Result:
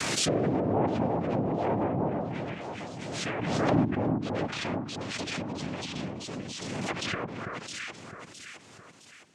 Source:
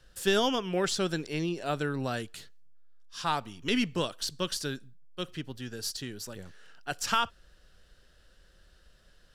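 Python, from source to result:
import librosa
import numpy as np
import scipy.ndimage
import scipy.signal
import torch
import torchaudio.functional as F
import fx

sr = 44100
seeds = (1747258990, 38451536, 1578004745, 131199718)

p1 = fx.noise_vocoder(x, sr, seeds[0], bands=4)
p2 = 10.0 ** (-23.5 / 20.0) * np.tanh(p1 / 10.0 ** (-23.5 / 20.0))
p3 = p1 + F.gain(torch.from_numpy(p2), -4.0).numpy()
p4 = fx.rotary(p3, sr, hz=1.0)
p5 = fx.echo_alternate(p4, sr, ms=331, hz=1400.0, feedback_pct=65, wet_db=-4)
p6 = fx.env_lowpass_down(p5, sr, base_hz=920.0, full_db=-26.0)
y = fx.pre_swell(p6, sr, db_per_s=26.0)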